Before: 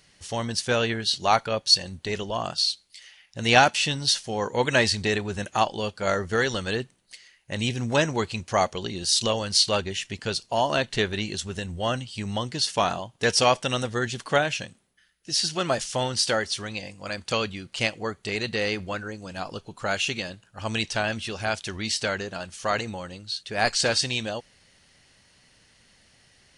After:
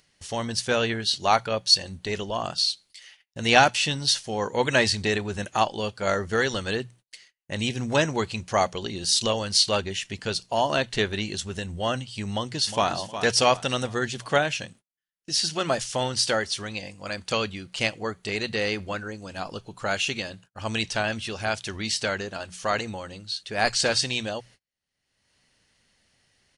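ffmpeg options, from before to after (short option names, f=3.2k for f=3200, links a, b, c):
-filter_complex "[0:a]asplit=2[a][b];[b]afade=t=in:st=12.31:d=0.01,afade=t=out:st=12.94:d=0.01,aecho=0:1:360|720|1080|1440:0.298538|0.119415|0.0477661|0.0191064[c];[a][c]amix=inputs=2:normalize=0,bandreject=f=60:t=h:w=6,bandreject=f=120:t=h:w=6,bandreject=f=180:t=h:w=6,agate=range=-37dB:threshold=-50dB:ratio=16:detection=peak,acompressor=mode=upward:threshold=-43dB:ratio=2.5"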